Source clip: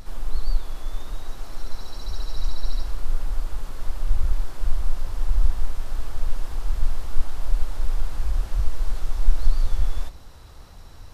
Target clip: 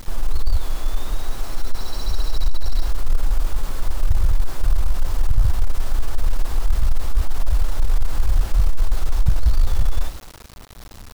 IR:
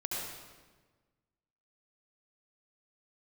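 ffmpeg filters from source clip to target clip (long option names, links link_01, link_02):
-af "agate=range=-7dB:threshold=-34dB:ratio=16:detection=peak,acrusher=bits=7:mix=0:aa=0.000001,aeval=exprs='0.75*sin(PI/2*3.16*val(0)/0.75)':channel_layout=same,volume=-6dB"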